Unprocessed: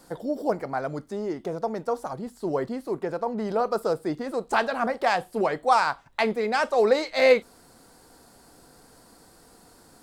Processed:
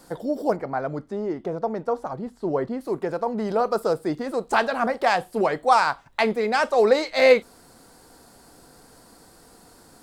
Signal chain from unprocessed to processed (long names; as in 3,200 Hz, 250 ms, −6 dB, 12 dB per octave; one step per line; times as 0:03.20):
0:00.56–0:02.81: low-pass filter 2,100 Hz 6 dB per octave
level +2.5 dB